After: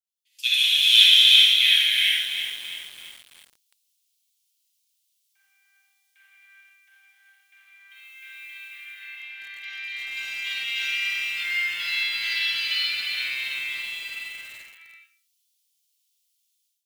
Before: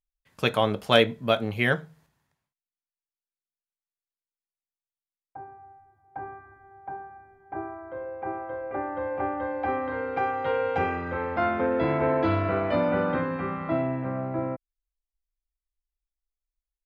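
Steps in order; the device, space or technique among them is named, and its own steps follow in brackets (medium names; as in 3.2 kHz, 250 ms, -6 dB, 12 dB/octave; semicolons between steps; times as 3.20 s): steep high-pass 2.8 kHz 36 dB/octave; 7.90–8.74 s: tilt EQ +3.5 dB/octave; gated-style reverb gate 500 ms flat, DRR -5.5 dB; far laptop microphone (reverberation RT60 0.35 s, pre-delay 42 ms, DRR -2 dB; high-pass 180 Hz 12 dB/octave; level rider gain up to 15.5 dB); bit-crushed delay 333 ms, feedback 55%, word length 6-bit, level -8.5 dB; trim -1 dB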